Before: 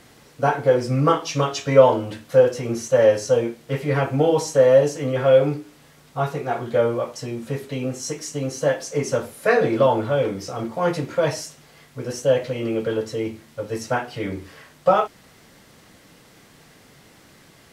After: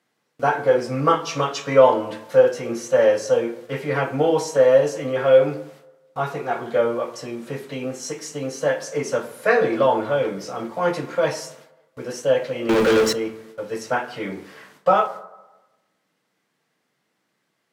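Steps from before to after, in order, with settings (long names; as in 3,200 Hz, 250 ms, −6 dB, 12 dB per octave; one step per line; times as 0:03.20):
high-pass filter 140 Hz 24 dB per octave
noise gate with hold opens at −38 dBFS
parametric band 1,400 Hz +4.5 dB 2.8 octaves
0:12.69–0:13.13: leveller curve on the samples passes 5
convolution reverb RT60 1.1 s, pre-delay 7 ms, DRR 11.5 dB
level −3 dB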